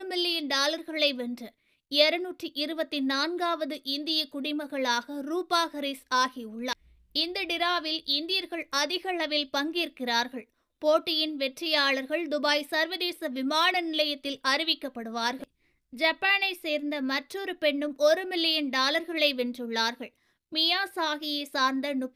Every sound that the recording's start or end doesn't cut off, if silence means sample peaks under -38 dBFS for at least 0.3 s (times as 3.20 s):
1.92–6.73 s
7.15–10.42 s
10.82–15.44 s
15.93–20.07 s